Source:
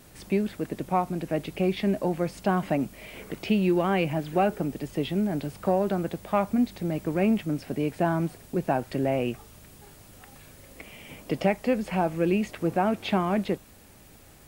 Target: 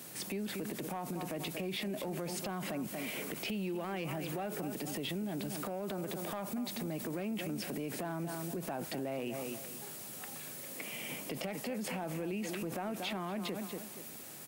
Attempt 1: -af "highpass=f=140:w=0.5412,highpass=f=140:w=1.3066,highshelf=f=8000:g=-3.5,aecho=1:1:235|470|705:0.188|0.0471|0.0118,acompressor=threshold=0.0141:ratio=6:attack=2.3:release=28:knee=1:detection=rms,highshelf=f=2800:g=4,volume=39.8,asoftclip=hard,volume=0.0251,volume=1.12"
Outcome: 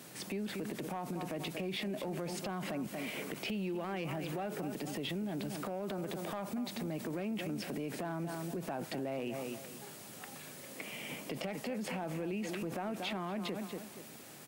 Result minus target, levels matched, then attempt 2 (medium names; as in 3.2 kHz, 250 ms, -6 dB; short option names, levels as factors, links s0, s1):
8 kHz band -4.0 dB
-af "highpass=f=140:w=0.5412,highpass=f=140:w=1.3066,highshelf=f=8000:g=5.5,aecho=1:1:235|470|705:0.188|0.0471|0.0118,acompressor=threshold=0.0141:ratio=6:attack=2.3:release=28:knee=1:detection=rms,highshelf=f=2800:g=4,volume=39.8,asoftclip=hard,volume=0.0251,volume=1.12"